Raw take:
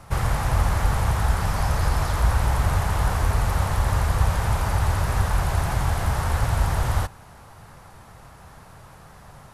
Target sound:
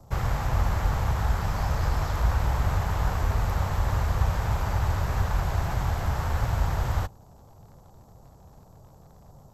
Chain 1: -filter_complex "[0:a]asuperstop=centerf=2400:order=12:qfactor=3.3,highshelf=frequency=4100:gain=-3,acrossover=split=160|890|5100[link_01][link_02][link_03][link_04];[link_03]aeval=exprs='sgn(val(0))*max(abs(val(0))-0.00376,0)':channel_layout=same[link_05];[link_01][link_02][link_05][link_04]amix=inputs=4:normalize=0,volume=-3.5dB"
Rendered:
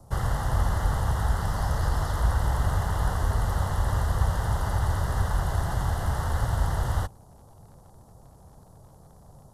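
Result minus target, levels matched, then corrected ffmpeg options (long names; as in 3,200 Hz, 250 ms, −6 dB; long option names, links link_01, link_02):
8,000 Hz band +2.5 dB
-filter_complex "[0:a]asuperstop=centerf=9600:order=12:qfactor=3.3,highshelf=frequency=4100:gain=-3,acrossover=split=160|890|5100[link_01][link_02][link_03][link_04];[link_03]aeval=exprs='sgn(val(0))*max(abs(val(0))-0.00376,0)':channel_layout=same[link_05];[link_01][link_02][link_05][link_04]amix=inputs=4:normalize=0,volume=-3.5dB"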